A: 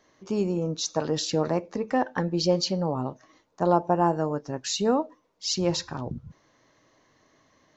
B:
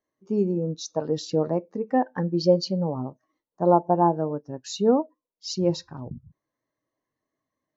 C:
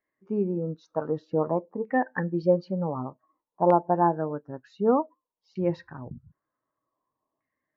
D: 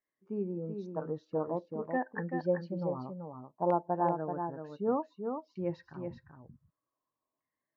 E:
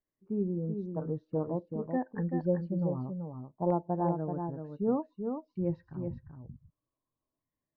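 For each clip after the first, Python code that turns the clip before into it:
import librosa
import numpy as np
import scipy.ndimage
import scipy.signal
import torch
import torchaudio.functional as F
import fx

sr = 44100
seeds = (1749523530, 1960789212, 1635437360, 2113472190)

y1 = fx.spectral_expand(x, sr, expansion=1.5)
y1 = F.gain(torch.from_numpy(y1), 2.5).numpy()
y2 = fx.filter_lfo_lowpass(y1, sr, shape='saw_down', hz=0.54, low_hz=910.0, high_hz=2100.0, q=3.9)
y2 = F.gain(torch.from_numpy(y2), -3.5).numpy()
y3 = y2 + 10.0 ** (-6.0 / 20.0) * np.pad(y2, (int(383 * sr / 1000.0), 0))[:len(y2)]
y3 = F.gain(torch.from_numpy(y3), -8.5).numpy()
y4 = fx.tilt_eq(y3, sr, slope=-4.5)
y4 = F.gain(torch.from_numpy(y4), -5.0).numpy()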